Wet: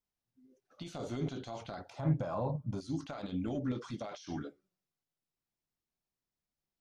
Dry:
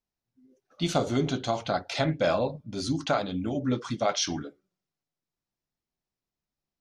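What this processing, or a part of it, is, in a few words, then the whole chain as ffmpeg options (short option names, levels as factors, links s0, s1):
de-esser from a sidechain: -filter_complex "[0:a]asplit=2[s0][s1];[s1]highpass=f=6500:p=1,apad=whole_len=300241[s2];[s0][s2]sidechaincompress=threshold=0.00316:ratio=20:attack=1.3:release=26,asettb=1/sr,asplit=3[s3][s4][s5];[s3]atrim=end=1.904[s6];[s4]atrim=start=1.9:end=2.81,asetpts=PTS-STARTPTS,afade=t=in:d=0.004:c=qsin,afade=t=out:st=0.906:d=0.004:c=qsin,equalizer=f=125:t=o:w=1:g=11,equalizer=f=1000:t=o:w=1:g=11,equalizer=f=2000:t=o:w=1:g=-7,equalizer=f=4000:t=o:w=1:g=-8[s7];[s5]atrim=start=2.806[s8];[s6][s7]acrossfade=d=0.004:c1=hsin:c2=qsin[s9];[s9][s8]acrossfade=d=0.004:c1=qsin:c2=hsin,volume=0.631"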